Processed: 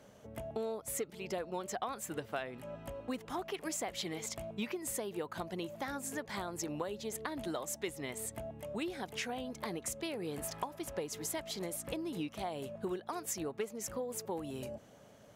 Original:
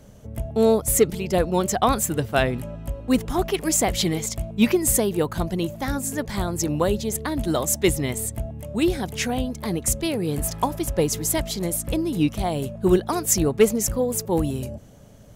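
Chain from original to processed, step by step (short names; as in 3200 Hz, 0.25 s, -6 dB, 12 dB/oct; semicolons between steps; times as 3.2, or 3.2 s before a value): HPF 680 Hz 6 dB/oct; high shelf 4500 Hz -11 dB; compressor 6:1, threshold -35 dBFS, peak gain reduction 17.5 dB; gain -1 dB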